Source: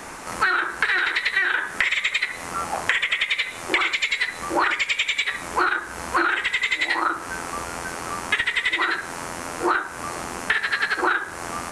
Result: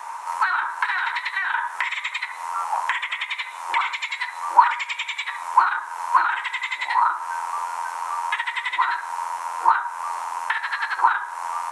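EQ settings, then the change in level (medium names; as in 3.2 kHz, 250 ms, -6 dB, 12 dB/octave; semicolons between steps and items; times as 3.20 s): resonant high-pass 950 Hz, resonance Q 11; band-stop 4.7 kHz, Q 21; -7.0 dB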